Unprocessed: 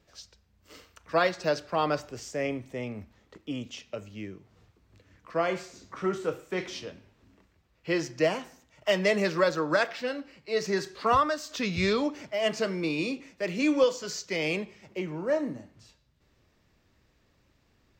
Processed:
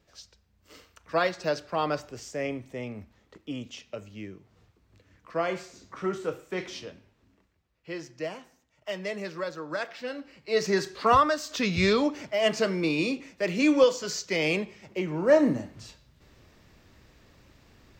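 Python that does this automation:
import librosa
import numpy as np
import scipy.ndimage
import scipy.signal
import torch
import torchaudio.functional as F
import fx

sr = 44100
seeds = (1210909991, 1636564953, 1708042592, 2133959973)

y = fx.gain(x, sr, db=fx.line((6.83, -1.0), (7.91, -9.0), (9.65, -9.0), (10.55, 3.0), (15.05, 3.0), (15.48, 10.0)))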